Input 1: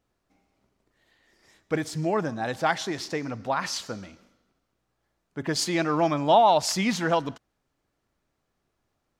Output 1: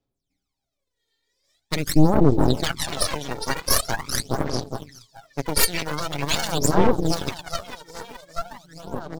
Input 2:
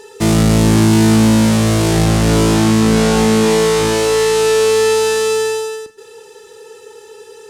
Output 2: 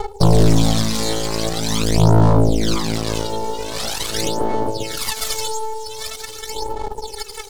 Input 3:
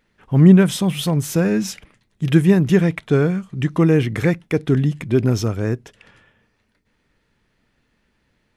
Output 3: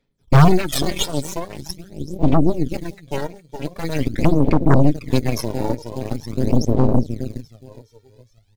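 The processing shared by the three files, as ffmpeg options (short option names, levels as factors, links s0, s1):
-filter_complex "[0:a]aecho=1:1:415|830|1245|1660|2075|2490|2905:0.376|0.218|0.126|0.0733|0.0425|0.0247|0.0143,asplit=2[s0][s1];[s1]acrusher=samples=20:mix=1:aa=0.000001,volume=0.501[s2];[s0][s2]amix=inputs=2:normalize=0,aphaser=in_gain=1:out_gain=1:delay=2.2:decay=0.79:speed=0.44:type=sinusoidal,dynaudnorm=f=170:g=17:m=2.37,bandreject=f=2800:w=5,acrossover=split=200[s3][s4];[s4]acompressor=threshold=0.0631:ratio=8[s5];[s3][s5]amix=inputs=2:normalize=0,afftdn=nr=13:nf=-31,highshelf=f=2300:t=q:w=1.5:g=9.5,aecho=1:1:7.3:0.38,aeval=exprs='0.75*(cos(1*acos(clip(val(0)/0.75,-1,1)))-cos(1*PI/2))+0.0422*(cos(7*acos(clip(val(0)/0.75,-1,1)))-cos(7*PI/2))+0.299*(cos(8*acos(clip(val(0)/0.75,-1,1)))-cos(8*PI/2))':c=same,volume=0.708"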